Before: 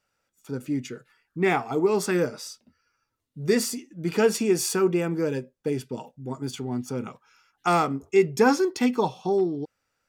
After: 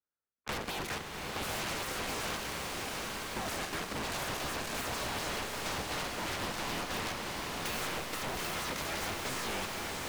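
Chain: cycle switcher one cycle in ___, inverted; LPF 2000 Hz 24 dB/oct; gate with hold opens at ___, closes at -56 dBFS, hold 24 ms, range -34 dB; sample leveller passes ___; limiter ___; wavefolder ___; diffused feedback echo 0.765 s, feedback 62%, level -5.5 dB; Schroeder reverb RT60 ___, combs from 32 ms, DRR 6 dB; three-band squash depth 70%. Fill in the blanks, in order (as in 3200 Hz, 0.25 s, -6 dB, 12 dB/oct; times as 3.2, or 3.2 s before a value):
3, -51 dBFS, 5, -19 dBFS, -31.5 dBFS, 3.1 s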